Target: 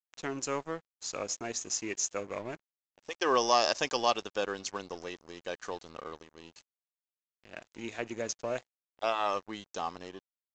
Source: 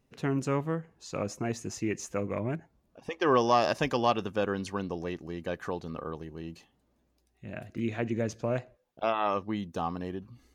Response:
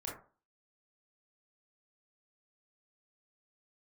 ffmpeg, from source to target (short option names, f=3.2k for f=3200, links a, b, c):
-af "bass=f=250:g=-15,treble=f=4k:g=14,aresample=16000,aeval=exprs='sgn(val(0))*max(abs(val(0))-0.00447,0)':c=same,aresample=44100,volume=-1dB"